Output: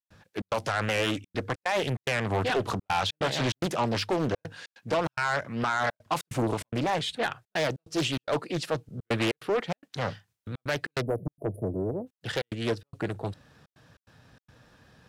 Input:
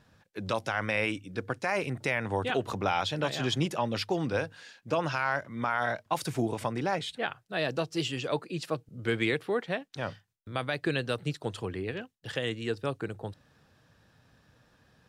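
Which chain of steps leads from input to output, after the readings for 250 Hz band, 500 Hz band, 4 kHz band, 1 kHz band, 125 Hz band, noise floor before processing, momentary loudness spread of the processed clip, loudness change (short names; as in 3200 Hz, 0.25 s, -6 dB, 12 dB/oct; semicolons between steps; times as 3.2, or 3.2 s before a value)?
+2.0 dB, +2.0 dB, +2.5 dB, +2.0 dB, +2.5 dB, -69 dBFS, 8 LU, +2.0 dB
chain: spectral delete 11.01–12.07, 700–9600 Hz; de-esser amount 80%; added harmonics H 5 -14 dB, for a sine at -16 dBFS; step gate ".xxx.xxxxxxx.xx" 145 bpm -60 dB; Doppler distortion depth 0.65 ms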